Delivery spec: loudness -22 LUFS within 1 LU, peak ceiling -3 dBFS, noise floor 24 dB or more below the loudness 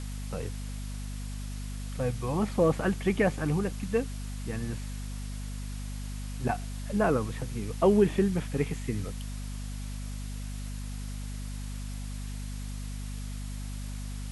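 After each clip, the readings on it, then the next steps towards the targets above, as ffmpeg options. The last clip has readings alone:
hum 50 Hz; highest harmonic 250 Hz; hum level -34 dBFS; noise floor -37 dBFS; noise floor target -56 dBFS; loudness -32.0 LUFS; peak level -11.5 dBFS; loudness target -22.0 LUFS
-> -af "bandreject=f=50:t=h:w=6,bandreject=f=100:t=h:w=6,bandreject=f=150:t=h:w=6,bandreject=f=200:t=h:w=6,bandreject=f=250:t=h:w=6"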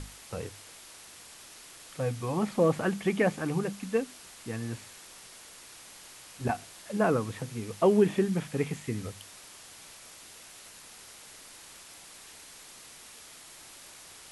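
hum not found; noise floor -50 dBFS; noise floor target -54 dBFS
-> -af "afftdn=nr=6:nf=-50"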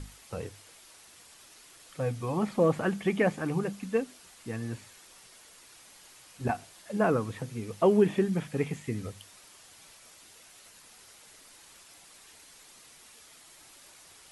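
noise floor -55 dBFS; loudness -30.0 LUFS; peak level -11.5 dBFS; loudness target -22.0 LUFS
-> -af "volume=2.51"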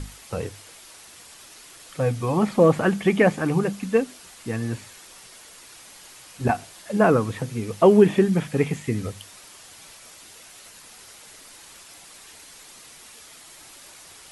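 loudness -22.0 LUFS; peak level -3.5 dBFS; noise floor -47 dBFS

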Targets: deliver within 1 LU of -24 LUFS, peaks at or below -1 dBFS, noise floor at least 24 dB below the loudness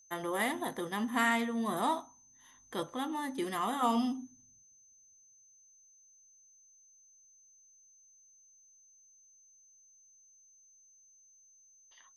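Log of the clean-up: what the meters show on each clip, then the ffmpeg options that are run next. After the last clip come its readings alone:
steady tone 6.2 kHz; tone level -60 dBFS; loudness -33.5 LUFS; peak level -17.5 dBFS; loudness target -24.0 LUFS
-> -af "bandreject=f=6200:w=30"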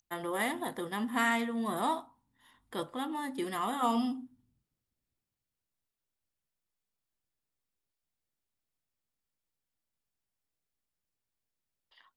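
steady tone not found; loudness -33.5 LUFS; peak level -17.5 dBFS; loudness target -24.0 LUFS
-> -af "volume=2.99"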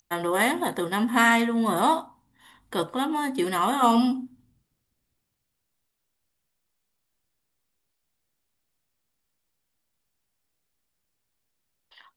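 loudness -24.0 LUFS; peak level -8.0 dBFS; noise floor -79 dBFS

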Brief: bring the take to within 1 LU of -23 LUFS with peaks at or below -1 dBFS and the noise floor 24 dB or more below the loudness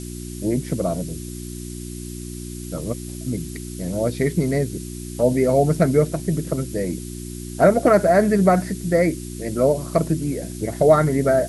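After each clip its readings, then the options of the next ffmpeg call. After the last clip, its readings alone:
hum 60 Hz; highest harmonic 360 Hz; hum level -30 dBFS; noise floor -33 dBFS; noise floor target -45 dBFS; loudness -20.5 LUFS; peak level -3.0 dBFS; loudness target -23.0 LUFS
-> -af "bandreject=f=60:t=h:w=4,bandreject=f=120:t=h:w=4,bandreject=f=180:t=h:w=4,bandreject=f=240:t=h:w=4,bandreject=f=300:t=h:w=4,bandreject=f=360:t=h:w=4"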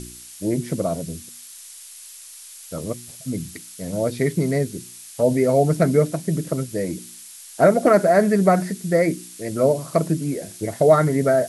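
hum not found; noise floor -42 dBFS; noise floor target -45 dBFS
-> -af "afftdn=nr=6:nf=-42"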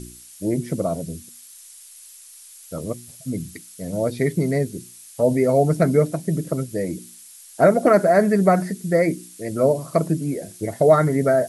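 noise floor -45 dBFS; loudness -20.5 LUFS; peak level -3.5 dBFS; loudness target -23.0 LUFS
-> -af "volume=0.75"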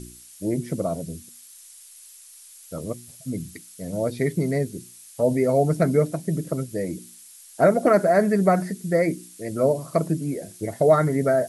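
loudness -23.0 LUFS; peak level -6.0 dBFS; noise floor -47 dBFS

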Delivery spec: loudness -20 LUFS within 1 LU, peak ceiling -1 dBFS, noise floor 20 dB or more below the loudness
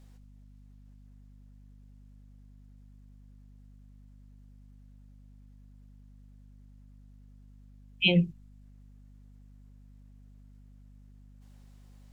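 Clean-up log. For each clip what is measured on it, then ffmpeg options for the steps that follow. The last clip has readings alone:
hum 50 Hz; highest harmonic 250 Hz; hum level -51 dBFS; loudness -26.0 LUFS; peak level -9.0 dBFS; loudness target -20.0 LUFS
-> -af "bandreject=f=50:t=h:w=4,bandreject=f=100:t=h:w=4,bandreject=f=150:t=h:w=4,bandreject=f=200:t=h:w=4,bandreject=f=250:t=h:w=4"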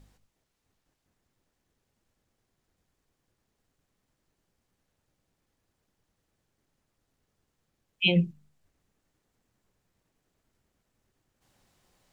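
hum not found; loudness -26.0 LUFS; peak level -9.0 dBFS; loudness target -20.0 LUFS
-> -af "volume=2"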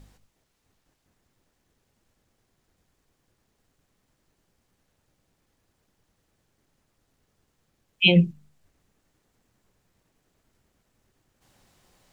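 loudness -20.0 LUFS; peak level -3.0 dBFS; noise floor -74 dBFS

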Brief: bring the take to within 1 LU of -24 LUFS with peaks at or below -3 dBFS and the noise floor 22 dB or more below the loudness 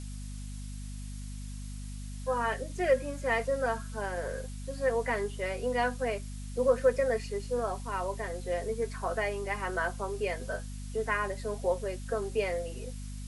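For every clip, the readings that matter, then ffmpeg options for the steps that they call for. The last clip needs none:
hum 50 Hz; highest harmonic 250 Hz; hum level -37 dBFS; noise floor -40 dBFS; noise floor target -55 dBFS; loudness -33.0 LUFS; peak level -13.5 dBFS; loudness target -24.0 LUFS
-> -af "bandreject=f=50:t=h:w=4,bandreject=f=100:t=h:w=4,bandreject=f=150:t=h:w=4,bandreject=f=200:t=h:w=4,bandreject=f=250:t=h:w=4"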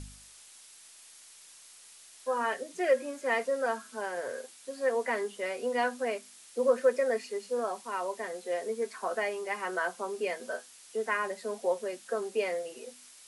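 hum not found; noise floor -54 dBFS; noise floor target -55 dBFS
-> -af "afftdn=nr=6:nf=-54"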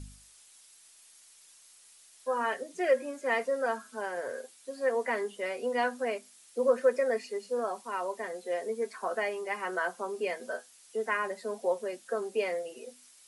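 noise floor -58 dBFS; loudness -32.5 LUFS; peak level -14.0 dBFS; loudness target -24.0 LUFS
-> -af "volume=2.66"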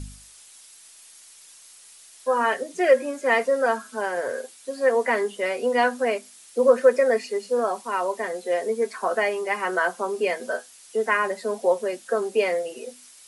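loudness -24.0 LUFS; peak level -5.5 dBFS; noise floor -49 dBFS

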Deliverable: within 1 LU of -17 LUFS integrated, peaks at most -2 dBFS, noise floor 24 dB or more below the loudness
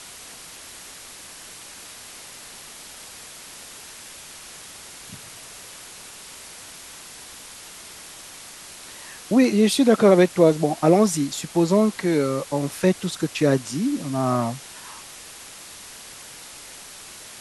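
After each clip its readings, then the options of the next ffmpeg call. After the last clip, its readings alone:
noise floor -42 dBFS; noise floor target -44 dBFS; loudness -20.0 LUFS; peak level -3.5 dBFS; loudness target -17.0 LUFS
-> -af "afftdn=nr=6:nf=-42"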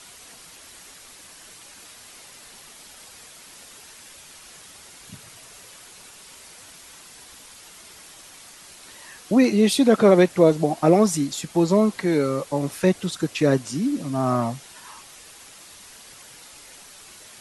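noise floor -46 dBFS; loudness -20.0 LUFS; peak level -4.0 dBFS; loudness target -17.0 LUFS
-> -af "volume=1.41,alimiter=limit=0.794:level=0:latency=1"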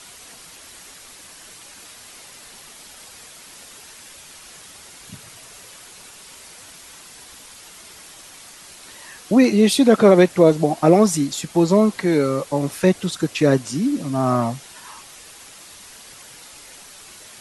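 loudness -17.5 LUFS; peak level -2.0 dBFS; noise floor -43 dBFS

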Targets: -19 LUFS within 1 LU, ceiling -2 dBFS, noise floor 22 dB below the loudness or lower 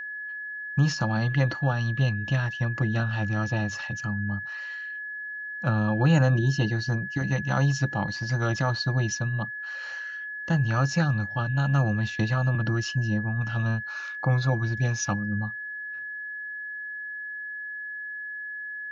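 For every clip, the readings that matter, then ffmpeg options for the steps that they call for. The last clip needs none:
steady tone 1.7 kHz; tone level -33 dBFS; loudness -27.5 LUFS; peak level -10.0 dBFS; loudness target -19.0 LUFS
-> -af "bandreject=f=1700:w=30"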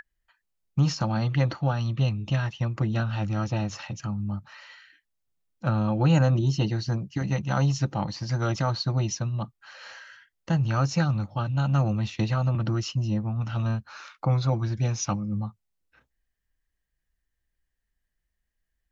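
steady tone not found; loudness -27.0 LUFS; peak level -10.5 dBFS; loudness target -19.0 LUFS
-> -af "volume=2.51"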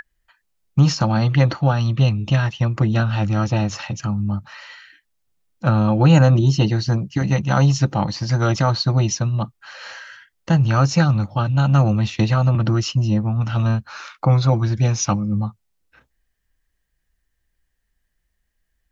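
loudness -19.0 LUFS; peak level -2.5 dBFS; noise floor -72 dBFS

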